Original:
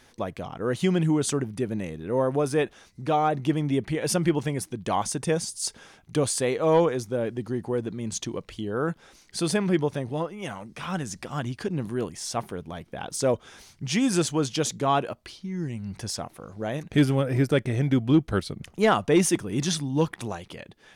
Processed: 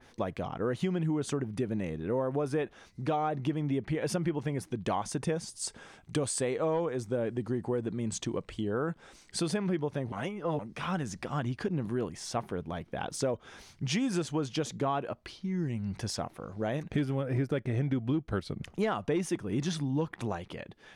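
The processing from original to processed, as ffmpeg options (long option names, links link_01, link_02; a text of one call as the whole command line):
ffmpeg -i in.wav -filter_complex "[0:a]asettb=1/sr,asplit=3[link_01][link_02][link_03];[link_01]atrim=end=5.614[link_04];[link_02]atrim=start=5.61:end=9.39,asetpts=PTS-STARTPTS,afade=type=in:duration=0.004:curve=qsin,afade=type=out:start_time=3.776:duration=0.004:curve=qsin,equalizer=frequency=8100:width_type=o:width=0.24:gain=9.5[link_05];[link_03]atrim=start=9.386[link_06];[link_04][link_05]acrossfade=duration=0.004:curve1=hsin:curve2=qsin[link_07];[link_07][link_06]acrossfade=duration=0.004:curve1=qsin:curve2=hsin,asplit=3[link_08][link_09][link_10];[link_08]atrim=end=10.122[link_11];[link_09]atrim=start=10.118:end=10.592,asetpts=PTS-STARTPTS,areverse[link_12];[link_10]atrim=start=10.588[link_13];[link_11][link_12]acrossfade=duration=0.004:curve1=hsin:curve2=hsin[link_14];[link_14][link_13]acrossfade=duration=0.004:curve1=hsin:curve2=hsin,highshelf=frequency=7100:gain=-9,acompressor=threshold=-27dB:ratio=6,adynamicequalizer=threshold=0.00316:dfrequency=2500:dqfactor=0.7:tfrequency=2500:tqfactor=0.7:attack=5:release=100:ratio=0.375:range=2.5:mode=cutabove:tftype=highshelf" out.wav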